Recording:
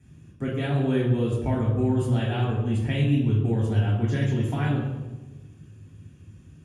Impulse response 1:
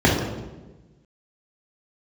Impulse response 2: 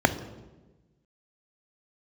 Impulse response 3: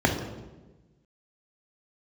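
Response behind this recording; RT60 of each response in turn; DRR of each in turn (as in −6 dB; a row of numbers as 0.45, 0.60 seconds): 1; 1.2, 1.2, 1.2 seconds; −5.0, 9.5, 1.5 decibels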